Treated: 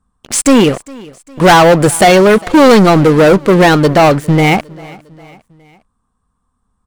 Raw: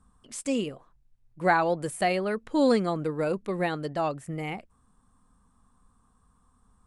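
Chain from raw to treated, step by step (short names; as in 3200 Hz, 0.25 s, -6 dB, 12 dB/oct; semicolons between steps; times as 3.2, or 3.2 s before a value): high shelf 9300 Hz -5 dB; sample leveller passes 5; feedback echo 0.405 s, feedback 50%, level -23 dB; gain +8 dB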